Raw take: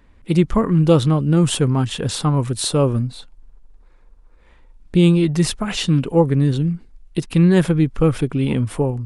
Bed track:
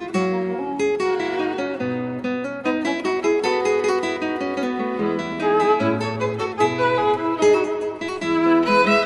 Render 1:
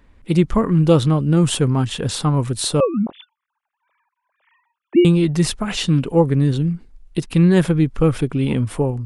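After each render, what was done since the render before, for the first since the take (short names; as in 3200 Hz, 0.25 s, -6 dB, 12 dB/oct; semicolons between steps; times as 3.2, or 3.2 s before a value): 2.8–5.05 sine-wave speech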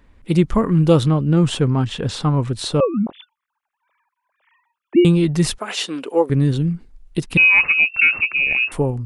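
1.08–2.92 air absorption 73 m; 5.58–6.3 HPF 330 Hz 24 dB/oct; 7.37–8.72 inverted band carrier 2700 Hz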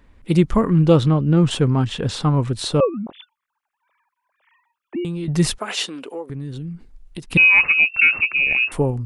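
0.7–1.51 air absorption 63 m; 2.89–5.28 compressor 2.5:1, threshold -29 dBFS; 5.88–7.3 compressor 3:1, threshold -31 dBFS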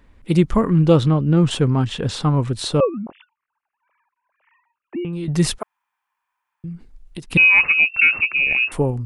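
2.98–5.13 elliptic low-pass 2800 Hz; 5.63–6.64 room tone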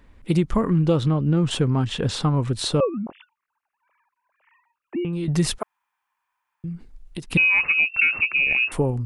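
compressor 3:1, threshold -17 dBFS, peak gain reduction 7 dB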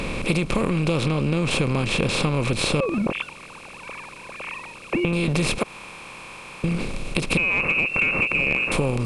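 per-bin compression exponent 0.4; compressor 4:1, threshold -19 dBFS, peak gain reduction 8 dB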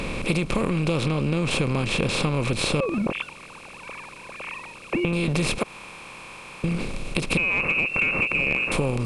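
gain -1.5 dB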